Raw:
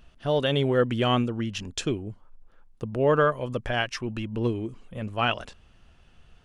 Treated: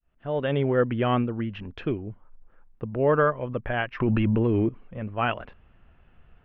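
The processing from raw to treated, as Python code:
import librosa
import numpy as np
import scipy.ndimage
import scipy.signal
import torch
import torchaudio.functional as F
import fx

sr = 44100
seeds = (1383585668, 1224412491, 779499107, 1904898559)

y = fx.fade_in_head(x, sr, length_s=0.51)
y = scipy.signal.sosfilt(scipy.signal.butter(4, 2400.0, 'lowpass', fs=sr, output='sos'), y)
y = fx.env_flatten(y, sr, amount_pct=100, at=(4.0, 4.69))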